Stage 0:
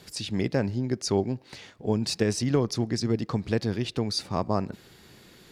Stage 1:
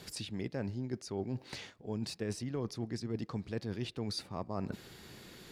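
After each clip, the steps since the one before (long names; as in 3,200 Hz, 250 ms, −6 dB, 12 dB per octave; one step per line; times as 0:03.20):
dynamic equaliser 6,000 Hz, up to −6 dB, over −44 dBFS, Q 1.1
reversed playback
downward compressor 5 to 1, threshold −35 dBFS, peak gain reduction 15.5 dB
reversed playback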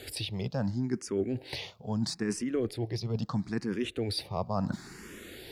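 frequency shifter mixed with the dry sound +0.75 Hz
level +9 dB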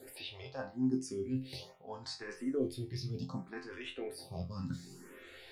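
resonators tuned to a chord F2 fifth, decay 0.28 s
phaser with staggered stages 0.6 Hz
level +7.5 dB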